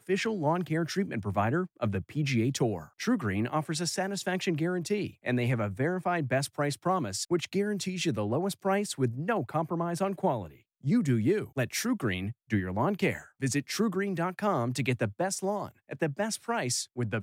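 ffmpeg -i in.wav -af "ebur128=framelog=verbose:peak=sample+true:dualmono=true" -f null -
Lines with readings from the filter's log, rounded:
Integrated loudness:
  I:         -27.3 LUFS
  Threshold: -37.3 LUFS
Loudness range:
  LRA:         0.9 LU
  Threshold: -47.3 LUFS
  LRA low:   -27.8 LUFS
  LRA high:  -26.9 LUFS
Sample peak:
  Peak:      -14.9 dBFS
True peak:
  Peak:      -14.9 dBFS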